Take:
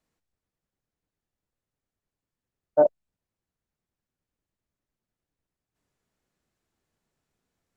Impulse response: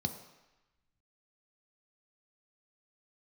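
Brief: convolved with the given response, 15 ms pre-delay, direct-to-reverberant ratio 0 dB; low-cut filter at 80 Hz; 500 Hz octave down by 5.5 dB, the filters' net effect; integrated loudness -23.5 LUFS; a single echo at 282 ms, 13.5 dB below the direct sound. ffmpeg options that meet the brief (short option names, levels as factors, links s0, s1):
-filter_complex "[0:a]highpass=80,equalizer=f=500:t=o:g=-7,aecho=1:1:282:0.211,asplit=2[s0][s1];[1:a]atrim=start_sample=2205,adelay=15[s2];[s1][s2]afir=irnorm=-1:irlink=0,volume=0.794[s3];[s0][s3]amix=inputs=2:normalize=0,volume=1.68"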